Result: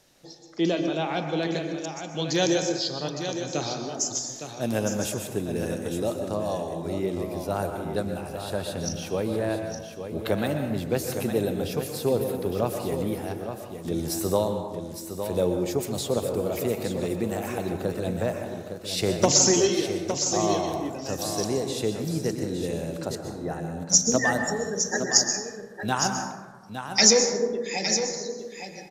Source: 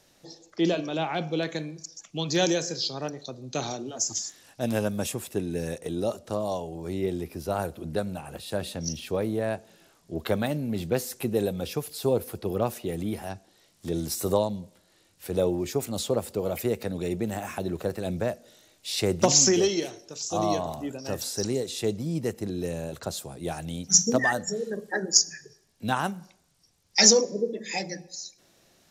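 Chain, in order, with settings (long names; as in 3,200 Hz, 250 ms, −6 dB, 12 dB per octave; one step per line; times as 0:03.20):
0:23.15–0:23.90: linear-phase brick-wall low-pass 2,100 Hz
single-tap delay 861 ms −8.5 dB
dense smooth reverb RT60 1.3 s, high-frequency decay 0.4×, pre-delay 110 ms, DRR 5.5 dB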